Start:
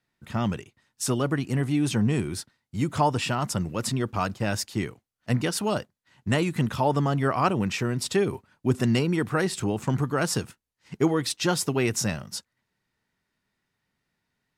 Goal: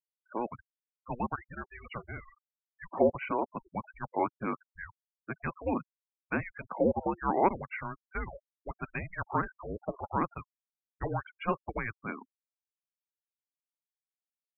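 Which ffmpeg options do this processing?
ffmpeg -i in.wav -filter_complex "[0:a]acrossover=split=400 2400:gain=0.0891 1 0.0891[link_01][link_02][link_03];[link_01][link_02][link_03]amix=inputs=3:normalize=0,highpass=frequency=520:width_type=q:width=0.5412,highpass=frequency=520:width_type=q:width=1.307,lowpass=frequency=3500:width_type=q:width=0.5176,lowpass=frequency=3500:width_type=q:width=0.7071,lowpass=frequency=3500:width_type=q:width=1.932,afreqshift=-350,afftfilt=real='re*gte(hypot(re,im),0.0178)':imag='im*gte(hypot(re,im),0.0178)':win_size=1024:overlap=0.75" out.wav

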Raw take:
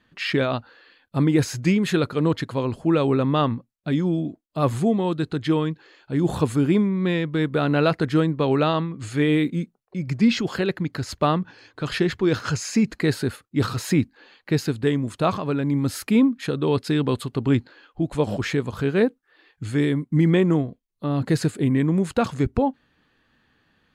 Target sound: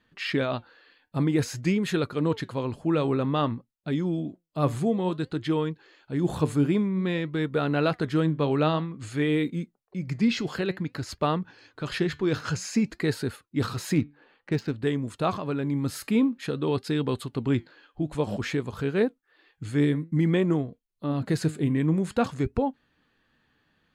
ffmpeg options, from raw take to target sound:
ffmpeg -i in.wav -filter_complex "[0:a]flanger=delay=2.1:depth=4.8:regen=85:speed=0.53:shape=sinusoidal,asettb=1/sr,asplit=3[link_01][link_02][link_03];[link_01]atrim=end=13.954[link_04];[link_02]atrim=start=13.95:end=14.82,asetpts=PTS-STARTPTS,afade=type=in:duration=0.004:curve=qsin,afade=type=out:start_time=0.866:duration=0.004:curve=qsin,adynamicsmooth=sensitivity=5.5:basefreq=2200[link_05];[link_03]atrim=start=14.816[link_06];[link_04][link_05]acrossfade=duration=0.004:curve1=hsin:curve2=qsin[link_07];[link_07][link_06]acrossfade=duration=0.004:curve1=qsin:curve2=hsin" out.wav

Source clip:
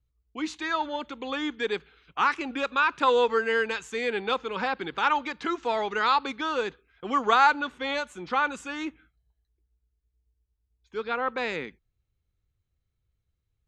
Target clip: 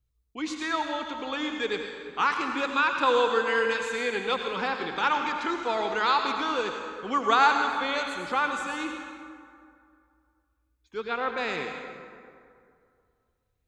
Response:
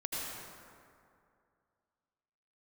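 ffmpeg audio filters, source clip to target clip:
-filter_complex "[0:a]asplit=2[link_01][link_02];[1:a]atrim=start_sample=2205,highshelf=frequency=3100:gain=10[link_03];[link_02][link_03]afir=irnorm=-1:irlink=0,volume=-6dB[link_04];[link_01][link_04]amix=inputs=2:normalize=0,volume=-4dB"

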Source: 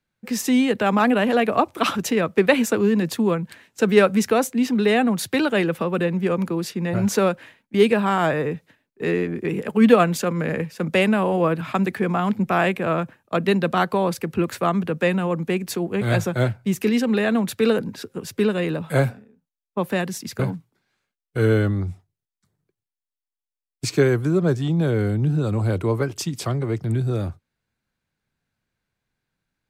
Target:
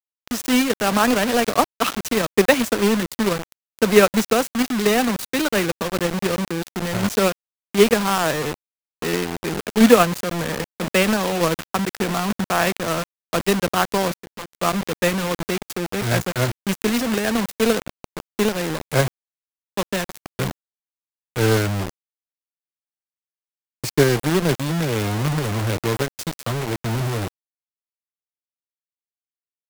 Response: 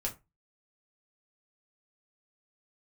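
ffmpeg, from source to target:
-filter_complex "[0:a]acrusher=bits=3:mix=0:aa=0.000001,asettb=1/sr,asplit=3[link_01][link_02][link_03];[link_01]atrim=end=14.144[link_04];[link_02]atrim=start=14.14:end=14.6,asetpts=PTS-STARTPTS,afade=type=in:duration=0.004:curve=qsin,afade=type=out:start_time=0.456:duration=0.004:curve=qsin,aeval=exprs='0.299*sin(PI/2*3.98*val(0)/0.299)':channel_layout=same[link_05];[link_03]atrim=start=14.596[link_06];[link_04][link_05]acrossfade=duration=0.004:curve1=hsin:curve2=qsin[link_07];[link_07][link_06]acrossfade=duration=0.004:curve1=qsin:curve2=hsin,aeval=exprs='0.75*(cos(1*acos(clip(val(0)/0.75,-1,1)))-cos(1*PI/2))+0.0596*(cos(7*acos(clip(val(0)/0.75,-1,1)))-cos(7*PI/2))':channel_layout=same,volume=2dB"

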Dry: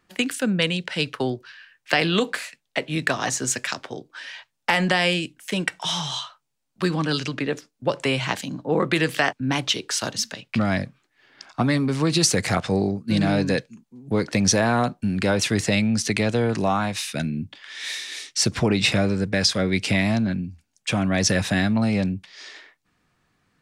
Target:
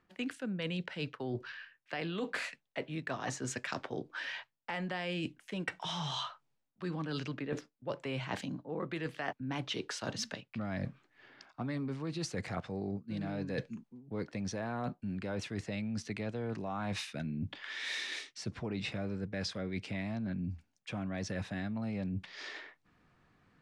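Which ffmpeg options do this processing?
ffmpeg -i in.wav -af "aemphasis=mode=reproduction:type=75fm,areverse,acompressor=threshold=-34dB:ratio=16,areverse" out.wav

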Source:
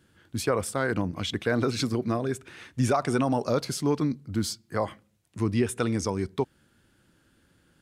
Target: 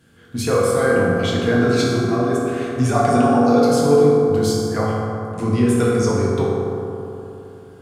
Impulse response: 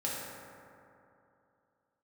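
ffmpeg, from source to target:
-filter_complex "[0:a]asettb=1/sr,asplit=3[link_01][link_02][link_03];[link_01]atrim=end=3.134[link_04];[link_02]atrim=start=3.13:end=3.62,asetpts=PTS-STARTPTS,afade=type=in:duration=0.004:curve=qsin,afade=type=out:start_time=0.486:duration=0.004:curve=qsin,highpass=frequency=140:width=0.5412,highpass=frequency=140:width=1.3066[link_05];[link_03]atrim=start=3.616[link_06];[link_04][link_05]acrossfade=duration=0.004:curve1=hsin:curve2=qsin[link_07];[link_07][link_06]acrossfade=duration=0.004:curve1=qsin:curve2=hsin,asplit=2[link_08][link_09];[link_09]acompressor=threshold=-34dB:ratio=6,volume=-1dB[link_10];[link_08][link_10]amix=inputs=2:normalize=0[link_11];[1:a]atrim=start_sample=2205,asetrate=38367,aresample=44100[link_12];[link_11][link_12]afir=irnorm=-1:irlink=0"

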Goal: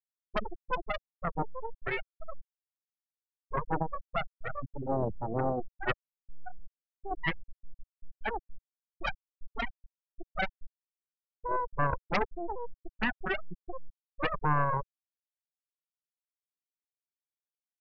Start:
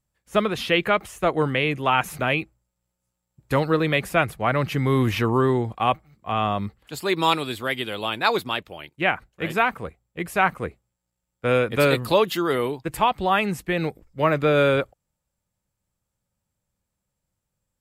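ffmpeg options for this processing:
ffmpeg -i in.wav -af "aeval=exprs='max(val(0),0)':channel_layout=same,afftfilt=real='re*gte(hypot(re,im),0.316)':imag='im*gte(hypot(re,im),0.316)':win_size=1024:overlap=0.75,aeval=exprs='0.355*(cos(1*acos(clip(val(0)/0.355,-1,1)))-cos(1*PI/2))+0.141*(cos(4*acos(clip(val(0)/0.355,-1,1)))-cos(4*PI/2))+0.0398*(cos(5*acos(clip(val(0)/0.355,-1,1)))-cos(5*PI/2))+0.0562*(cos(8*acos(clip(val(0)/0.355,-1,1)))-cos(8*PI/2))':channel_layout=same" out.wav

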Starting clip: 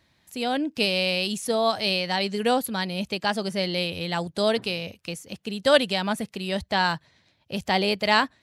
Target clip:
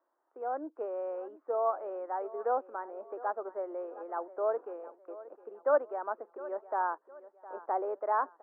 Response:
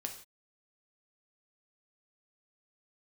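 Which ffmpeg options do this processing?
-af "highpass=frequency=480:poles=1,aeval=exprs='0.398*(abs(mod(val(0)/0.398+3,4)-2)-1)':channel_layout=same,asuperpass=centerf=660:order=12:qfactor=0.62,aecho=1:1:711|1422|2133:0.141|0.0494|0.0173,volume=-4.5dB"

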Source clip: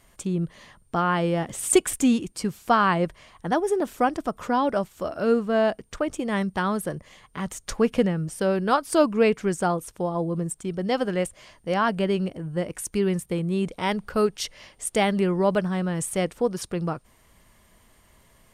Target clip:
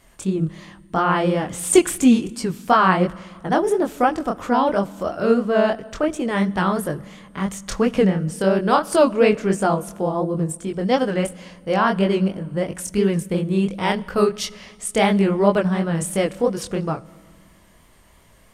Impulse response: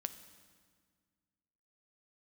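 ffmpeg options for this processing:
-filter_complex "[0:a]flanger=delay=19.5:depth=7.3:speed=2.9,asplit=2[link_01][link_02];[1:a]atrim=start_sample=2205,highshelf=frequency=7700:gain=-8.5[link_03];[link_02][link_03]afir=irnorm=-1:irlink=0,volume=-3dB[link_04];[link_01][link_04]amix=inputs=2:normalize=0,volume=3.5dB"

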